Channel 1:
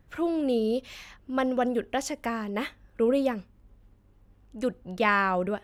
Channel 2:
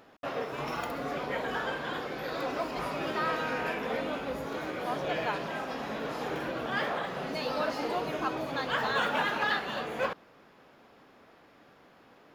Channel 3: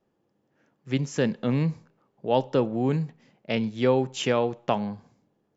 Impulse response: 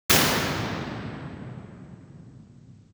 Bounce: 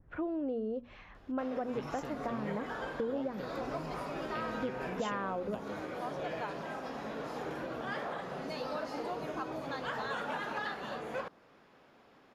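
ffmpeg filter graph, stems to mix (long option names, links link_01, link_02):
-filter_complex "[0:a]lowpass=1500,bandreject=frequency=60:width_type=h:width=6,bandreject=frequency=120:width_type=h:width=6,bandreject=frequency=180:width_type=h:width=6,bandreject=frequency=240:width_type=h:width=6,volume=-1.5dB[link_01];[1:a]adelay=1150,volume=-4dB[link_02];[2:a]acompressor=threshold=-27dB:ratio=6,adelay=850,volume=-14.5dB[link_03];[link_01][link_02]amix=inputs=2:normalize=0,adynamicequalizer=threshold=0.00282:dfrequency=2900:dqfactor=0.89:tfrequency=2900:tqfactor=0.89:attack=5:release=100:ratio=0.375:range=3:mode=cutabove:tftype=bell,acompressor=threshold=-33dB:ratio=5,volume=0dB[link_04];[link_03][link_04]amix=inputs=2:normalize=0,lowpass=11000"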